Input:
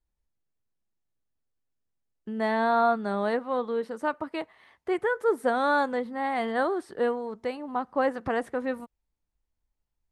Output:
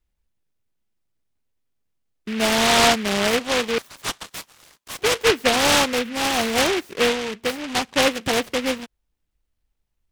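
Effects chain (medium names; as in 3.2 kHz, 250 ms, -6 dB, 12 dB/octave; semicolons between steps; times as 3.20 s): 3.78–4.99 s: brick-wall FIR high-pass 970 Hz; delay time shaken by noise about 2.1 kHz, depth 0.2 ms; trim +6.5 dB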